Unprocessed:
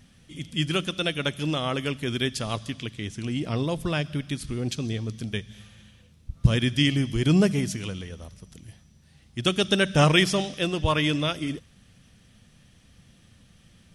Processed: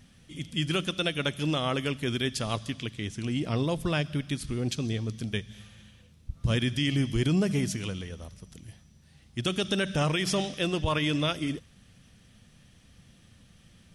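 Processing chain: limiter -16 dBFS, peak gain reduction 11.5 dB; gain -1 dB

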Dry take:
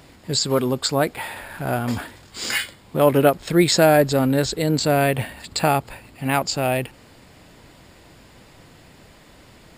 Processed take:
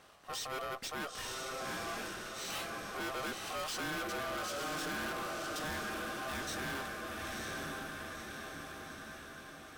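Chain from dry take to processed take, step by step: low shelf 100 Hz -11 dB; ring modulator 920 Hz; diffused feedback echo 0.982 s, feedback 51%, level -6 dB; tube stage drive 30 dB, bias 0.4; gain -6.5 dB

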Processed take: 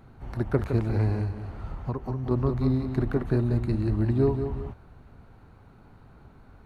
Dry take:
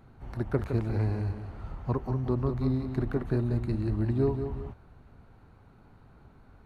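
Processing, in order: 1.24–2.31 compressor 5:1, threshold -30 dBFS, peak gain reduction 7 dB; gain +3.5 dB

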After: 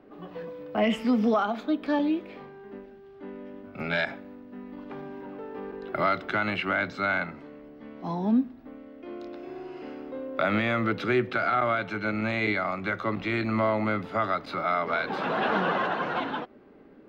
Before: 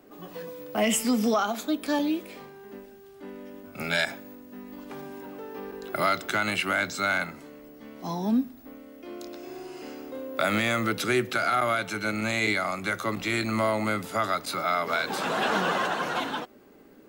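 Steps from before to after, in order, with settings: air absorption 320 m; gain +1.5 dB

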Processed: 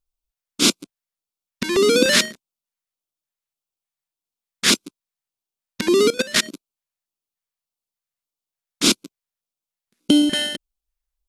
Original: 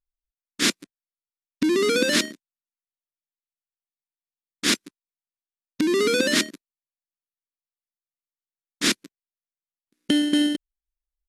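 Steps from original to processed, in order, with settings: 6.1–6.5 level quantiser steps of 20 dB; LFO notch square 1.7 Hz 300–1800 Hz; gain +6 dB

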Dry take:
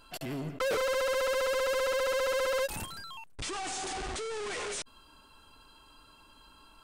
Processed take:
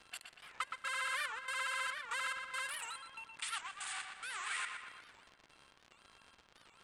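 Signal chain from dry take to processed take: HPF 1200 Hz 24 dB/oct; gate -56 dBFS, range -7 dB; resonant high shelf 7200 Hz +8.5 dB, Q 3; limiter -26 dBFS, peak gain reduction 7 dB; step gate "x.x.xx.x" 71 bpm -24 dB; crackle 100/s -43 dBFS; air absorption 110 m; on a send: darkening echo 0.119 s, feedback 59%, low-pass 4100 Hz, level -5 dB; on the sum: record warp 78 rpm, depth 250 cents; gain +3 dB

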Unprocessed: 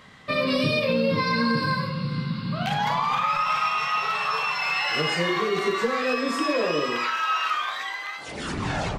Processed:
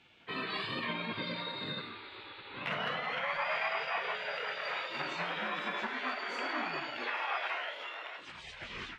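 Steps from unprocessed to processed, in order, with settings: three-band isolator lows -18 dB, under 330 Hz, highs -20 dB, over 3400 Hz; spectral gate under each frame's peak -15 dB weak; formant shift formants -2 st

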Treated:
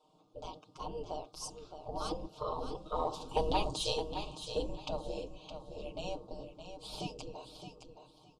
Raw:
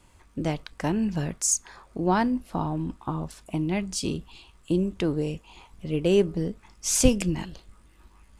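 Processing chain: Doppler pass-by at 3.57, 18 m/s, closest 7.2 m; Chebyshev band-stop 840–4000 Hz, order 2; spectral gate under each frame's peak -15 dB weak; low-pass opened by the level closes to 2800 Hz, open at -31.5 dBFS; comb 6.5 ms, depth 86%; in parallel at +3 dB: compressor, threshold -57 dBFS, peak gain reduction 20 dB; on the sum: soft clip -25.5 dBFS, distortion -28 dB; on a send: feedback echo 0.616 s, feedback 22%, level -9 dB; on the sum: gain +9.5 dB

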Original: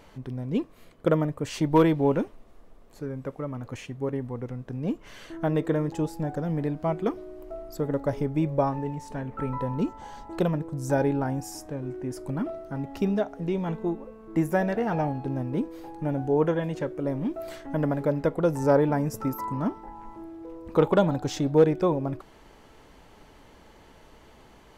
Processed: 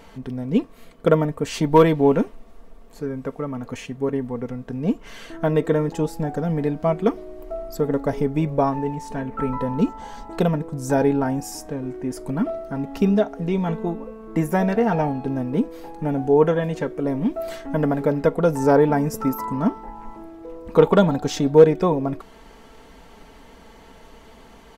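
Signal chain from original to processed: comb 4.4 ms, depth 46%; gain +5 dB

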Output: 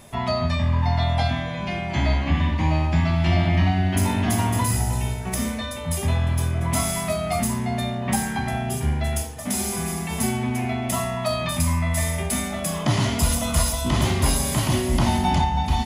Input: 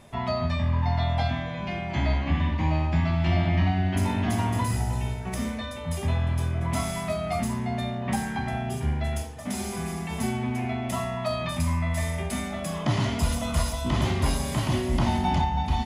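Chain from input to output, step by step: high shelf 7000 Hz +12 dB; gain +3.5 dB

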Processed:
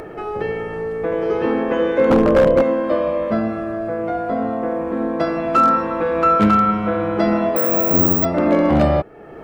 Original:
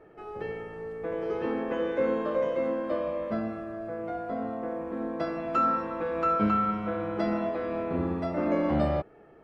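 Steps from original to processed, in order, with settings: 2.1–2.62 tilt -4.5 dB/oct; in parallel at -1 dB: upward compressor, threshold -28 dBFS; on the sum: wavefolder -12 dBFS; 7.56–8.25 careless resampling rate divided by 2×, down none, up zero stuff; gain +5.5 dB

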